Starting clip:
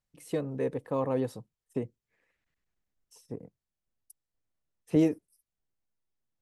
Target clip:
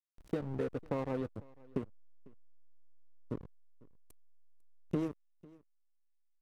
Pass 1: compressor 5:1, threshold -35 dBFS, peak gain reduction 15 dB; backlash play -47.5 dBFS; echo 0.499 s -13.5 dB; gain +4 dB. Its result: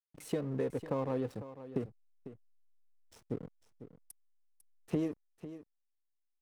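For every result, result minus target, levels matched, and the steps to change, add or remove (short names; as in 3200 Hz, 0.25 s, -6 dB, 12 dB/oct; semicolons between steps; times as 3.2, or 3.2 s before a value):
backlash: distortion -11 dB; echo-to-direct +10 dB
change: backlash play -36 dBFS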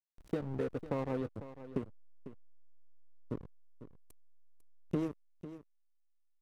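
echo-to-direct +10 dB
change: echo 0.499 s -23.5 dB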